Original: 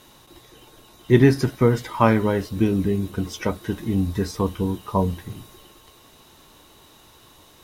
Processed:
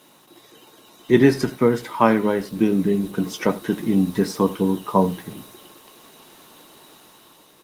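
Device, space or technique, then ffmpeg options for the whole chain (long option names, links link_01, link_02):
video call: -filter_complex "[0:a]asplit=3[link_01][link_02][link_03];[link_01]afade=type=out:start_time=2.49:duration=0.02[link_04];[link_02]adynamicequalizer=threshold=0.00794:dfrequency=150:dqfactor=5.6:tfrequency=150:tqfactor=5.6:attack=5:release=100:ratio=0.375:range=3:mode=boostabove:tftype=bell,afade=type=in:start_time=2.49:duration=0.02,afade=type=out:start_time=4.26:duration=0.02[link_05];[link_03]afade=type=in:start_time=4.26:duration=0.02[link_06];[link_04][link_05][link_06]amix=inputs=3:normalize=0,highpass=frequency=160:width=0.5412,highpass=frequency=160:width=1.3066,aecho=1:1:84:0.133,dynaudnorm=framelen=170:gausssize=9:maxgain=5.5dB" -ar 48000 -c:a libopus -b:a 24k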